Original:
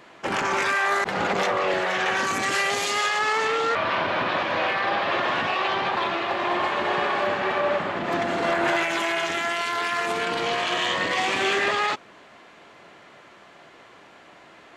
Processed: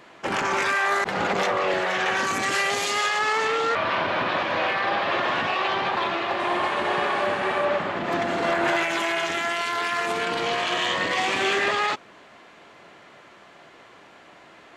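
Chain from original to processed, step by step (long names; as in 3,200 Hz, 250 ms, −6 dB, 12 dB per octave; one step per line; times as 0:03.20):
0:06.38–0:07.64: noise in a band 5,800–9,900 Hz −59 dBFS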